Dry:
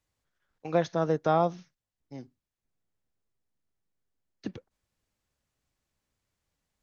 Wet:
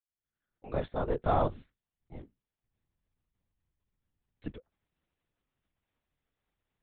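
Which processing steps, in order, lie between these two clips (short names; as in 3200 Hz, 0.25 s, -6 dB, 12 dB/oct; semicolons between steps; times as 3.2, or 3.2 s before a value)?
opening faded in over 1.33 s; LPC vocoder at 8 kHz whisper; gain -2.5 dB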